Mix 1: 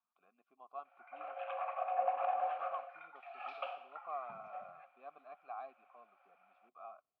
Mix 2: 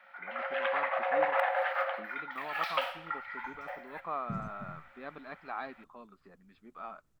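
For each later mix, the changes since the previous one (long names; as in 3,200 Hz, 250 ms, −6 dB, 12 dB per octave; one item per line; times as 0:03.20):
background: entry −0.85 s
master: remove formant filter a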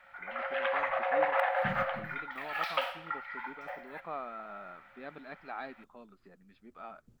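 first voice: add parametric band 1,100 Hz −7.5 dB 0.44 octaves
second voice: entry −2.65 s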